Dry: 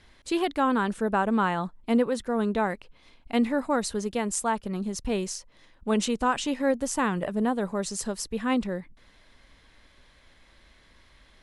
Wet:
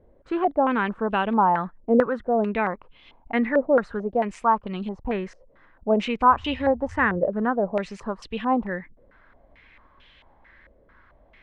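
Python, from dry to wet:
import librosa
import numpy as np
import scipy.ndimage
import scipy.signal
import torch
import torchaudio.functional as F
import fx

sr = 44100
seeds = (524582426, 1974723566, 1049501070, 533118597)

y = fx.dmg_noise_band(x, sr, seeds[0], low_hz=61.0, high_hz=98.0, level_db=-42.0, at=(6.29, 7.17), fade=0.02)
y = fx.filter_held_lowpass(y, sr, hz=4.5, low_hz=530.0, high_hz=3000.0)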